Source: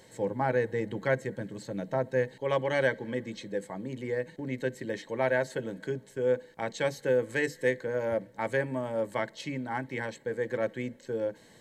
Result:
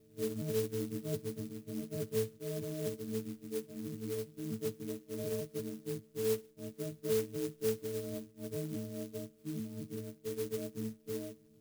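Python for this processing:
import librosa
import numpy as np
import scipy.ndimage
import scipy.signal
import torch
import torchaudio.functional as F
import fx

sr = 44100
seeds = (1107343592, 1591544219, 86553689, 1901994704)

y = fx.freq_snap(x, sr, grid_st=6)
y = scipy.signal.sosfilt(scipy.signal.cheby2(4, 40, 870.0, 'lowpass', fs=sr, output='sos'), y)
y = fx.clock_jitter(y, sr, seeds[0], jitter_ms=0.098)
y = F.gain(torch.from_numpy(y), -3.5).numpy()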